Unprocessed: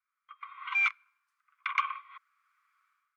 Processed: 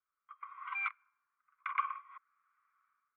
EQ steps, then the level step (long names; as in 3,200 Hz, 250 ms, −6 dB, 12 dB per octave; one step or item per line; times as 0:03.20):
low-pass filter 1,400 Hz 12 dB per octave
dynamic equaliser 830 Hz, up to −5 dB, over −51 dBFS, Q 3.2
high-frequency loss of the air 86 metres
0.0 dB